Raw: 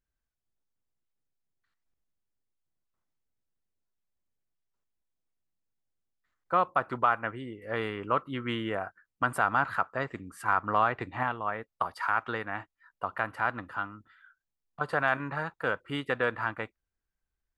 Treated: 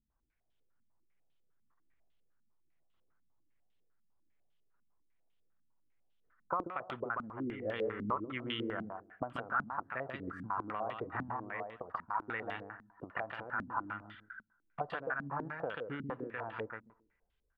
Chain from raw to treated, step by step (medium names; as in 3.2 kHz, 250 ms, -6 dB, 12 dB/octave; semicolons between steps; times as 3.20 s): compression 10:1, threshold -40 dBFS, peak gain reduction 20.5 dB; feedback delay 137 ms, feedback 19%, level -4.5 dB; on a send at -23.5 dB: reverberation RT60 1.1 s, pre-delay 52 ms; on the sum: step-sequenced low-pass 10 Hz 220–3200 Hz; trim +1.5 dB